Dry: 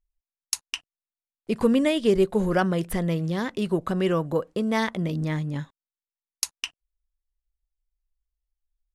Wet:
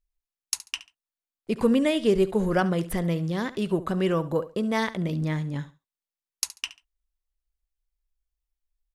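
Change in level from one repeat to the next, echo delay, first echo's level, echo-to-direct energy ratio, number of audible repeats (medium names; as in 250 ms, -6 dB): -13.0 dB, 70 ms, -16.5 dB, -16.5 dB, 2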